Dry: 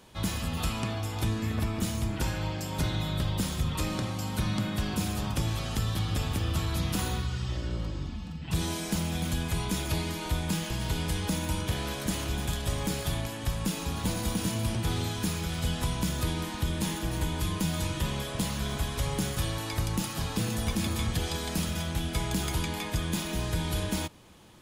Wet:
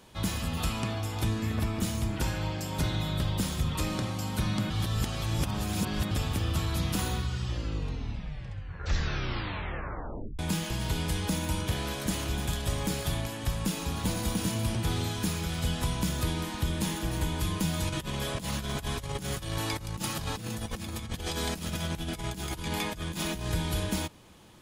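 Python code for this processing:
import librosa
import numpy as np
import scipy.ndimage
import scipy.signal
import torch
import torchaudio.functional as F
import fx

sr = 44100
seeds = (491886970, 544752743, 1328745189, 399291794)

y = fx.over_compress(x, sr, threshold_db=-33.0, ratio=-0.5, at=(17.87, 23.52))
y = fx.edit(y, sr, fx.reverse_span(start_s=4.7, length_s=1.41),
    fx.tape_stop(start_s=7.42, length_s=2.97), tone=tone)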